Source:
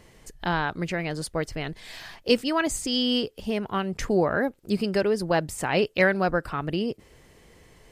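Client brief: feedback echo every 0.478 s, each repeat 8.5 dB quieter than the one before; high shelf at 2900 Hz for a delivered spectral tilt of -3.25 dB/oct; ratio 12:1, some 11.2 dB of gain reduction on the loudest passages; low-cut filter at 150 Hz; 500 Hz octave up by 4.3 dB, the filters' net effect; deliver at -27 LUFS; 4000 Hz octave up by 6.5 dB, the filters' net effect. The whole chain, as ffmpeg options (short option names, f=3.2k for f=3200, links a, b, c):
-af "highpass=150,equalizer=f=500:t=o:g=5,highshelf=f=2.9k:g=5,equalizer=f=4k:t=o:g=5,acompressor=threshold=-21dB:ratio=12,aecho=1:1:478|956|1434|1912:0.376|0.143|0.0543|0.0206"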